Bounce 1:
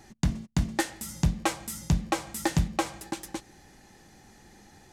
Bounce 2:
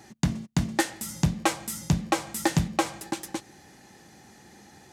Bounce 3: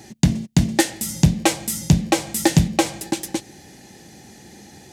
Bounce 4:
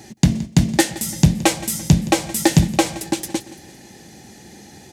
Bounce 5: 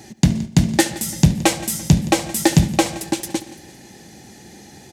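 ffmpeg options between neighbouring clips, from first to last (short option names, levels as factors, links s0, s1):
-af "highpass=99,volume=1.41"
-af "equalizer=f=1200:t=o:w=1:g=-10.5,volume=2.82"
-af "aecho=1:1:170|340|510|680:0.126|0.0592|0.0278|0.0131,volume=1.19"
-filter_complex "[0:a]asplit=2[s0][s1];[s1]adelay=72,lowpass=f=4400:p=1,volume=0.15,asplit=2[s2][s3];[s3]adelay=72,lowpass=f=4400:p=1,volume=0.49,asplit=2[s4][s5];[s5]adelay=72,lowpass=f=4400:p=1,volume=0.49,asplit=2[s6][s7];[s7]adelay=72,lowpass=f=4400:p=1,volume=0.49[s8];[s0][s2][s4][s6][s8]amix=inputs=5:normalize=0"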